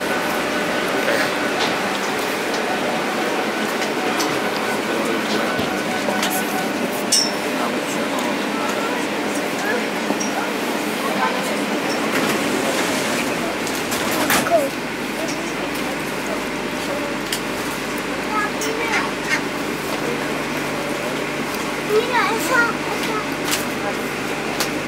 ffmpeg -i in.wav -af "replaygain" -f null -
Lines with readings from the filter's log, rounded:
track_gain = +2.5 dB
track_peak = 0.559